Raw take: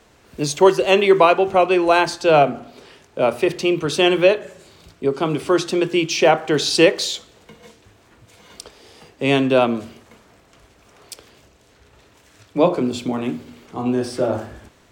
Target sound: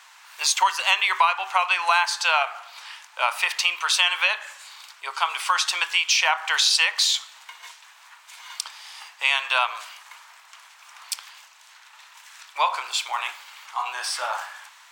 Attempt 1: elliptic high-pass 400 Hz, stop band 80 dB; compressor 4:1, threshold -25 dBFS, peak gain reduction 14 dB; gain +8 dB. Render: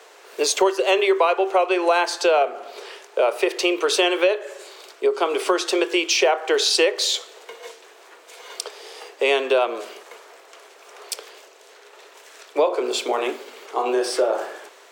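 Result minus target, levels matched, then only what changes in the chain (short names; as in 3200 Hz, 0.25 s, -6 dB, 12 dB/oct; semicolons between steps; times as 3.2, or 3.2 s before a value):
500 Hz band +17.5 dB
change: elliptic high-pass 910 Hz, stop band 80 dB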